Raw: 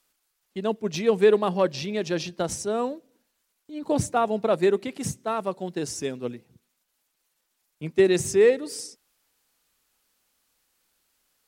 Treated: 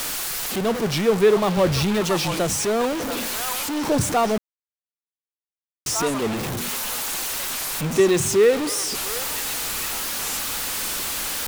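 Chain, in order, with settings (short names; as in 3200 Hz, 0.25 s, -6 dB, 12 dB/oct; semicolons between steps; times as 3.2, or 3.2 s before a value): zero-crossing step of -21.5 dBFS; 1.57–2.01 bell 69 Hz +14.5 dB 1.6 oct; delay with a stepping band-pass 0.686 s, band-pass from 1100 Hz, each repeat 1.4 oct, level -2.5 dB; 4.38–5.86 mute; record warp 45 rpm, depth 160 cents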